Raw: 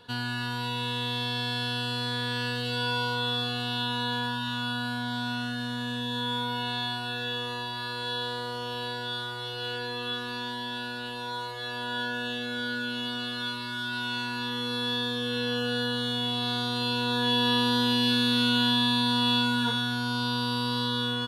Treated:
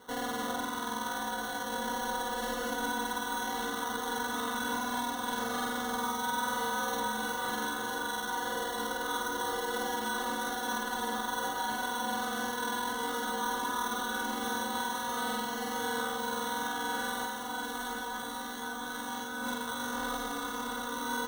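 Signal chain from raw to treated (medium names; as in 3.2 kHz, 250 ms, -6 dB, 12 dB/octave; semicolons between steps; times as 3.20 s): high-pass 220 Hz 24 dB/octave; treble shelf 3.6 kHz +12 dB; compressor with a negative ratio -27 dBFS, ratio -0.5; peak limiter -23.5 dBFS, peak gain reduction 9 dB; sample-and-hold 18×; echo whose repeats swap between lows and highs 326 ms, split 1.7 kHz, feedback 89%, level -6.5 dB; trim -3.5 dB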